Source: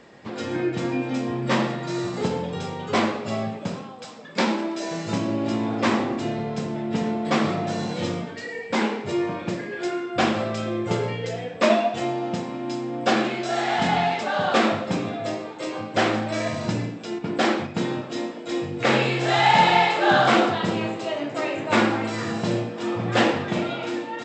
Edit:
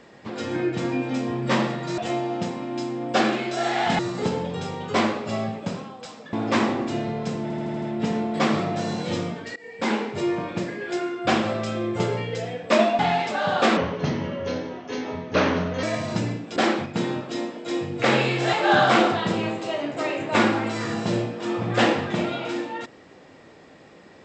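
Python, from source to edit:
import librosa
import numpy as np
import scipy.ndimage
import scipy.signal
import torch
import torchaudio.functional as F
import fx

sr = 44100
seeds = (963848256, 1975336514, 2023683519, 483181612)

y = fx.edit(x, sr, fx.cut(start_s=4.32, length_s=1.32),
    fx.stutter(start_s=6.73, slice_s=0.08, count=6),
    fx.fade_in_from(start_s=8.47, length_s=0.51, curve='qsin', floor_db=-19.5),
    fx.move(start_s=11.9, length_s=2.01, to_s=1.98),
    fx.speed_span(start_s=14.69, length_s=1.67, speed=0.81),
    fx.cut(start_s=17.09, length_s=0.28),
    fx.cut(start_s=19.34, length_s=0.57), tone=tone)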